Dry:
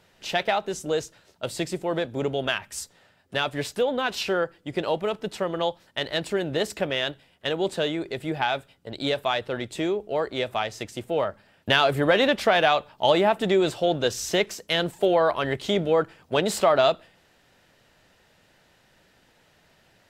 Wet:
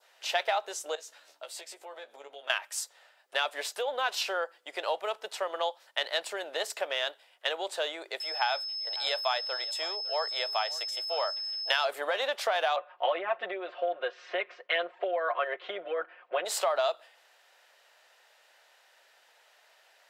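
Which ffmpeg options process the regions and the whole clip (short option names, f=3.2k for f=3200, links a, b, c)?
-filter_complex "[0:a]asettb=1/sr,asplit=3[a][b][c];[a]atrim=end=0.954[d];[b]atrim=start=0.95:end=2.5,asetpts=PTS-STARTPTS,afade=t=in:d=0.004:c=qsin,afade=t=out:st=1.546:d=0.004:c=qsin,acompressor=threshold=-39dB:ratio=5:attack=3.2:release=140:knee=1:detection=peak,aeval=exprs='val(0)+0.00316*(sin(2*PI*60*n/s)+sin(2*PI*2*60*n/s)/2+sin(2*PI*3*60*n/s)/3+sin(2*PI*4*60*n/s)/4+sin(2*PI*5*60*n/s)/5)':c=same,asplit=2[e][f];[f]adelay=14,volume=-5dB[g];[e][g]amix=inputs=2:normalize=0,atrim=end_sample=68355[h];[c]atrim=start=2.496[i];[d][h]acrossfade=d=0.004:c1=hsin:c2=qsin[j];[j][i]acrossfade=d=0.004:c1=qsin:c2=hsin,asettb=1/sr,asplit=3[k][l][m];[k]atrim=end=8.204[n];[l]atrim=start=8.2:end=11.85,asetpts=PTS-STARTPTS,afade=t=in:d=0.004:c=qsin,afade=t=out:st=3.646:d=0.004:c=qsin,highpass=550,aeval=exprs='val(0)+0.0224*sin(2*PI*5200*n/s)':c=same,aecho=1:1:556:0.106,atrim=end_sample=160965[o];[m]atrim=start=11.846[p];[n][o]acrossfade=d=0.004:c1=hsin:c2=qsin[q];[q][p]acrossfade=d=0.004:c1=qsin:c2=hsin,asettb=1/sr,asplit=3[r][s][t];[r]atrim=end=12.764[u];[s]atrim=start=12.76:end=16.45,asetpts=PTS-STARTPTS,afade=t=in:d=0.004:c=qsin,afade=t=out:st=3.686:d=0.004:c=qsin,lowpass=f=2.5k:w=0.5412,lowpass=f=2.5k:w=1.3066,bandreject=f=870:w=6.9,aecho=1:1:5.6:0.99,atrim=end_sample=162729[v];[t]atrim=start=16.446[w];[u][v]acrossfade=d=0.004:c1=hsin:c2=qsin[x];[x][w]acrossfade=d=0.004:c1=qsin:c2=hsin,acompressor=threshold=-22dB:ratio=6,adynamicequalizer=threshold=0.00708:dfrequency=2300:dqfactor=1.3:tfrequency=2300:tqfactor=1.3:attack=5:release=100:ratio=0.375:range=2.5:mode=cutabove:tftype=bell,highpass=f=580:w=0.5412,highpass=f=580:w=1.3066"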